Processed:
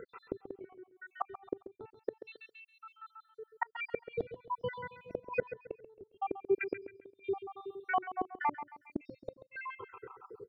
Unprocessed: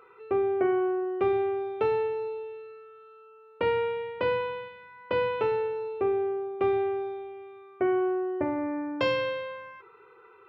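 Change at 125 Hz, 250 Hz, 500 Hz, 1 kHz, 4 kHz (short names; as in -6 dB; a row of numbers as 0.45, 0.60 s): -9.0, -13.5, -13.0, -5.5, -16.5 dB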